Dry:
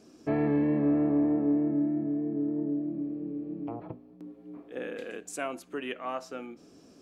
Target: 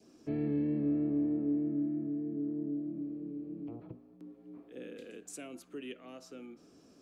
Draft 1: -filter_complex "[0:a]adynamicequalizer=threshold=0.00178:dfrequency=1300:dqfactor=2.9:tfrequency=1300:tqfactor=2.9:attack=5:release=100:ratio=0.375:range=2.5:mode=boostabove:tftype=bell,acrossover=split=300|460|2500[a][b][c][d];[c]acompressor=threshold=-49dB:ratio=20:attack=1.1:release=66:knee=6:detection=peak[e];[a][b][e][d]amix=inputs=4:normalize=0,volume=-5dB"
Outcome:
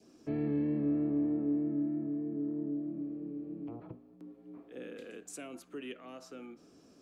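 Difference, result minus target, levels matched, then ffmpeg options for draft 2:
compressor: peak gain reduction -8 dB
-filter_complex "[0:a]adynamicequalizer=threshold=0.00178:dfrequency=1300:dqfactor=2.9:tfrequency=1300:tqfactor=2.9:attack=5:release=100:ratio=0.375:range=2.5:mode=boostabove:tftype=bell,acrossover=split=300|460|2500[a][b][c][d];[c]acompressor=threshold=-57.5dB:ratio=20:attack=1.1:release=66:knee=6:detection=peak[e];[a][b][e][d]amix=inputs=4:normalize=0,volume=-5dB"

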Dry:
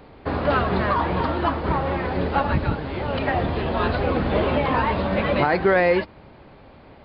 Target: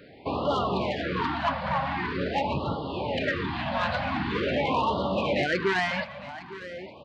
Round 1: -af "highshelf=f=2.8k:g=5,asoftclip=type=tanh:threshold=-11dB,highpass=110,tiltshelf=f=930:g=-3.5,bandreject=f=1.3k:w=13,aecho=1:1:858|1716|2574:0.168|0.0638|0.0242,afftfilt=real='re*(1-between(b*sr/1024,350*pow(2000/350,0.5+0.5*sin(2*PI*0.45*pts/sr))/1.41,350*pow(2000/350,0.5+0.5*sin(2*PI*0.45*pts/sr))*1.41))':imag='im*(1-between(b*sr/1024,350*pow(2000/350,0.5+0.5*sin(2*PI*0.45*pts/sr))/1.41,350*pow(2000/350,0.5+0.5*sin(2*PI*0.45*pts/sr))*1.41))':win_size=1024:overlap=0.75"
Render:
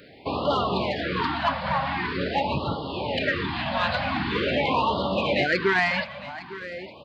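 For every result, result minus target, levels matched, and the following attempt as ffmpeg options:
soft clip: distortion -7 dB; 4000 Hz band +2.0 dB
-af "highshelf=f=2.8k:g=5,asoftclip=type=tanh:threshold=-17dB,highpass=110,tiltshelf=f=930:g=-3.5,bandreject=f=1.3k:w=13,aecho=1:1:858|1716|2574:0.168|0.0638|0.0242,afftfilt=real='re*(1-between(b*sr/1024,350*pow(2000/350,0.5+0.5*sin(2*PI*0.45*pts/sr))/1.41,350*pow(2000/350,0.5+0.5*sin(2*PI*0.45*pts/sr))*1.41))':imag='im*(1-between(b*sr/1024,350*pow(2000/350,0.5+0.5*sin(2*PI*0.45*pts/sr))/1.41,350*pow(2000/350,0.5+0.5*sin(2*PI*0.45*pts/sr))*1.41))':win_size=1024:overlap=0.75"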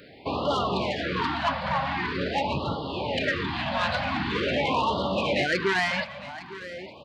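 4000 Hz band +3.0 dB
-af "highshelf=f=2.8k:g=-3,asoftclip=type=tanh:threshold=-17dB,highpass=110,tiltshelf=f=930:g=-3.5,bandreject=f=1.3k:w=13,aecho=1:1:858|1716|2574:0.168|0.0638|0.0242,afftfilt=real='re*(1-between(b*sr/1024,350*pow(2000/350,0.5+0.5*sin(2*PI*0.45*pts/sr))/1.41,350*pow(2000/350,0.5+0.5*sin(2*PI*0.45*pts/sr))*1.41))':imag='im*(1-between(b*sr/1024,350*pow(2000/350,0.5+0.5*sin(2*PI*0.45*pts/sr))/1.41,350*pow(2000/350,0.5+0.5*sin(2*PI*0.45*pts/sr))*1.41))':win_size=1024:overlap=0.75"

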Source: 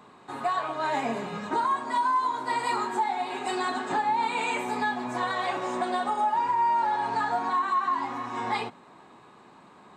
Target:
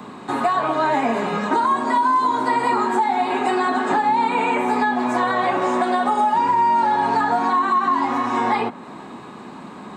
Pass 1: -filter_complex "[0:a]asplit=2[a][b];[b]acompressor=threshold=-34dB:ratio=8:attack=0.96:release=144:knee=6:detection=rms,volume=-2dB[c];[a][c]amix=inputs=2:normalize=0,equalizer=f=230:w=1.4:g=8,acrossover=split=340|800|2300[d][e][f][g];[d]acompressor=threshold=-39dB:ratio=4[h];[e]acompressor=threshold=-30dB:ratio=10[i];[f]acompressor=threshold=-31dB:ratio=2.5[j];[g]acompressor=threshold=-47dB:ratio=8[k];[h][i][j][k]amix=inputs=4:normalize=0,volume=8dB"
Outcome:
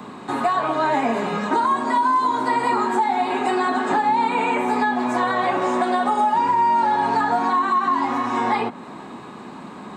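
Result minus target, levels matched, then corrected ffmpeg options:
compressor: peak gain reduction +9.5 dB
-filter_complex "[0:a]asplit=2[a][b];[b]acompressor=threshold=-23dB:ratio=8:attack=0.96:release=144:knee=6:detection=rms,volume=-2dB[c];[a][c]amix=inputs=2:normalize=0,equalizer=f=230:w=1.4:g=8,acrossover=split=340|800|2300[d][e][f][g];[d]acompressor=threshold=-39dB:ratio=4[h];[e]acompressor=threshold=-30dB:ratio=10[i];[f]acompressor=threshold=-31dB:ratio=2.5[j];[g]acompressor=threshold=-47dB:ratio=8[k];[h][i][j][k]amix=inputs=4:normalize=0,volume=8dB"

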